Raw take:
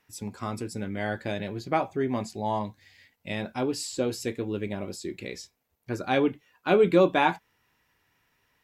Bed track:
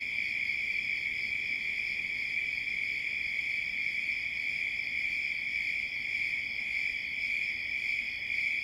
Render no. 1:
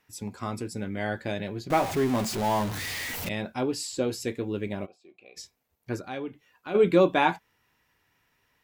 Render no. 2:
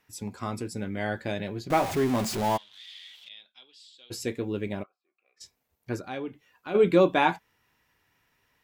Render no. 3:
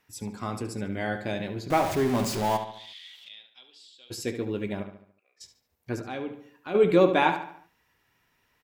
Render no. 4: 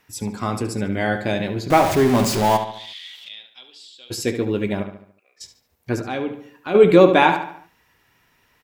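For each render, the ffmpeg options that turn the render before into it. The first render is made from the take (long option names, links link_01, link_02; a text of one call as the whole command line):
ffmpeg -i in.wav -filter_complex "[0:a]asettb=1/sr,asplit=3[link_01][link_02][link_03];[link_01]atrim=end=1.704[link_04];[link_02]atrim=start=1.7:end=3.29,asetpts=PTS-STARTPTS,afade=type=in:duration=0.004:curve=qsin,afade=type=out:start_time=1.586:duration=0.004:curve=qsin,aeval=exprs='val(0)+0.5*0.0398*sgn(val(0))':channel_layout=same[link_05];[link_03]atrim=start=3.286[link_06];[link_04][link_05]acrossfade=duration=0.004:curve1=hsin:curve2=qsin[link_07];[link_07][link_06]acrossfade=duration=0.004:curve1=qsin:curve2=hsin,asplit=3[link_08][link_09][link_10];[link_08]afade=type=out:start_time=4.85:duration=0.02[link_11];[link_09]asplit=3[link_12][link_13][link_14];[link_12]bandpass=frequency=730:width_type=q:width=8,volume=0dB[link_15];[link_13]bandpass=frequency=1090:width_type=q:width=8,volume=-6dB[link_16];[link_14]bandpass=frequency=2440:width_type=q:width=8,volume=-9dB[link_17];[link_15][link_16][link_17]amix=inputs=3:normalize=0,afade=type=in:start_time=4.85:duration=0.02,afade=type=out:start_time=5.36:duration=0.02[link_18];[link_10]afade=type=in:start_time=5.36:duration=0.02[link_19];[link_11][link_18][link_19]amix=inputs=3:normalize=0,asplit=3[link_20][link_21][link_22];[link_20]afade=type=out:start_time=5.99:duration=0.02[link_23];[link_21]acompressor=threshold=-51dB:ratio=1.5:attack=3.2:release=140:knee=1:detection=peak,afade=type=in:start_time=5.99:duration=0.02,afade=type=out:start_time=6.74:duration=0.02[link_24];[link_22]afade=type=in:start_time=6.74:duration=0.02[link_25];[link_23][link_24][link_25]amix=inputs=3:normalize=0" out.wav
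ffmpeg -i in.wav -filter_complex "[0:a]asplit=3[link_01][link_02][link_03];[link_01]afade=type=out:start_time=2.56:duration=0.02[link_04];[link_02]bandpass=frequency=3400:width_type=q:width=9.4,afade=type=in:start_time=2.56:duration=0.02,afade=type=out:start_time=4.1:duration=0.02[link_05];[link_03]afade=type=in:start_time=4.1:duration=0.02[link_06];[link_04][link_05][link_06]amix=inputs=3:normalize=0,asplit=3[link_07][link_08][link_09];[link_07]afade=type=out:start_time=4.82:duration=0.02[link_10];[link_08]bandpass=frequency=1300:width_type=q:width=5.6,afade=type=in:start_time=4.82:duration=0.02,afade=type=out:start_time=5.4:duration=0.02[link_11];[link_09]afade=type=in:start_time=5.4:duration=0.02[link_12];[link_10][link_11][link_12]amix=inputs=3:normalize=0" out.wav
ffmpeg -i in.wav -filter_complex "[0:a]asplit=2[link_01][link_02];[link_02]adelay=72,lowpass=frequency=4500:poles=1,volume=-9dB,asplit=2[link_03][link_04];[link_04]adelay=72,lowpass=frequency=4500:poles=1,volume=0.47,asplit=2[link_05][link_06];[link_06]adelay=72,lowpass=frequency=4500:poles=1,volume=0.47,asplit=2[link_07][link_08];[link_08]adelay=72,lowpass=frequency=4500:poles=1,volume=0.47,asplit=2[link_09][link_10];[link_10]adelay=72,lowpass=frequency=4500:poles=1,volume=0.47[link_11];[link_01][link_03][link_05][link_07][link_09][link_11]amix=inputs=6:normalize=0" out.wav
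ffmpeg -i in.wav -af "volume=8.5dB,alimiter=limit=-1dB:level=0:latency=1" out.wav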